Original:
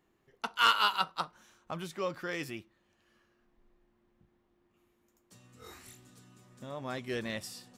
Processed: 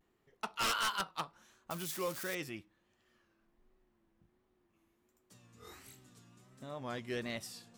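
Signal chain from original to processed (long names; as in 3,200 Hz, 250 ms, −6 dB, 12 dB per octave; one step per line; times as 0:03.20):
0:01.71–0:02.35: spike at every zero crossing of −30.5 dBFS
pitch vibrato 1.4 Hz 98 cents
wave folding −24 dBFS
level −3 dB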